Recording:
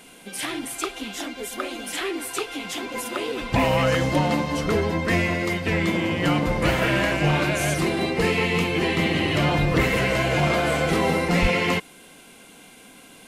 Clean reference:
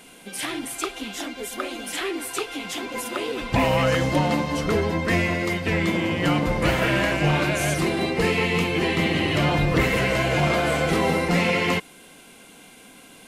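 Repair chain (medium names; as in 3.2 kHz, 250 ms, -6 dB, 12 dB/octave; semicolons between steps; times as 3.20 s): clip repair -10.5 dBFS; 11.41–11.53 s: high-pass 140 Hz 24 dB/octave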